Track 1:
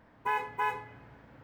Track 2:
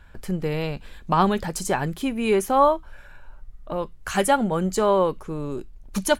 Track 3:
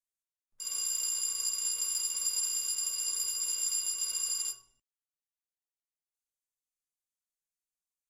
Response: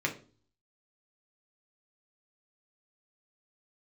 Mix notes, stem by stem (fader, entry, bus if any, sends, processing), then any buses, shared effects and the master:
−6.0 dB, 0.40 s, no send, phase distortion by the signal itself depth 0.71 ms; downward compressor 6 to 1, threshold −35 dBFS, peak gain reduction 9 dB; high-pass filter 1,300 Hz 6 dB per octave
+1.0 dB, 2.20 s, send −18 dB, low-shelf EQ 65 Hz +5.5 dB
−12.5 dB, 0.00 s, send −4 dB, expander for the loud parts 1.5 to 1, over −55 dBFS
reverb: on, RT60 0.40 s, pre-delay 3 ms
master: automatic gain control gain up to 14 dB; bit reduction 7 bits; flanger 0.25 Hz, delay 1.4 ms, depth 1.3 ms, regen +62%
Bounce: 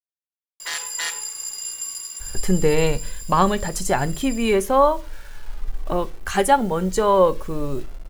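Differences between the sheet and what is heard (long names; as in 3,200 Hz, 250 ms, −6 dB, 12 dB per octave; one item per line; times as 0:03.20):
stem 1: missing downward compressor 6 to 1, threshold −35 dBFS, peak gain reduction 9 dB
stem 3: missing expander for the loud parts 1.5 to 1, over −55 dBFS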